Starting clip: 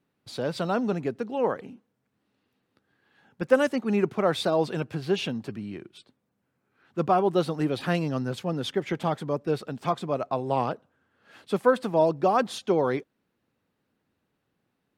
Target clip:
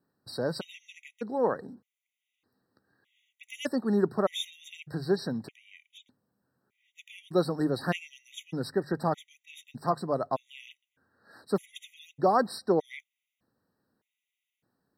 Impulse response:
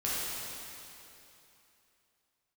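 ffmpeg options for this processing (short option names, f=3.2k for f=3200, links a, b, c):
-af "highshelf=f=8.5k:g=6,bandreject=f=50:t=h:w=6,bandreject=f=100:t=h:w=6,bandreject=f=150:t=h:w=6,afftfilt=real='re*gt(sin(2*PI*0.82*pts/sr)*(1-2*mod(floor(b*sr/1024/1900),2)),0)':imag='im*gt(sin(2*PI*0.82*pts/sr)*(1-2*mod(floor(b*sr/1024/1900),2)),0)':win_size=1024:overlap=0.75,volume=-1dB"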